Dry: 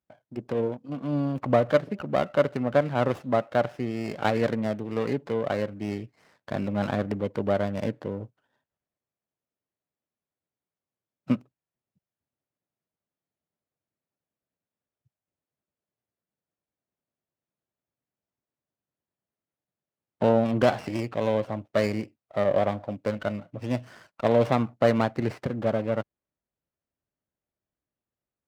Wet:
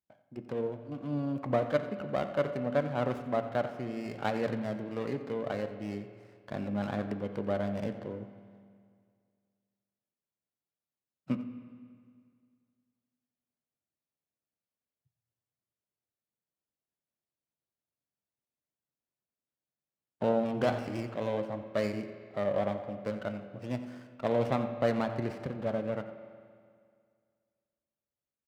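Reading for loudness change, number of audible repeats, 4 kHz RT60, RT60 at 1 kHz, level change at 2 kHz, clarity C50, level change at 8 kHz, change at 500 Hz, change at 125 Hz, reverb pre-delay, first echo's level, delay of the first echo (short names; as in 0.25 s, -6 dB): -6.5 dB, 1, 1.9 s, 2.1 s, -7.0 dB, 9.0 dB, n/a, -6.5 dB, -7.0 dB, 11 ms, -15.5 dB, 89 ms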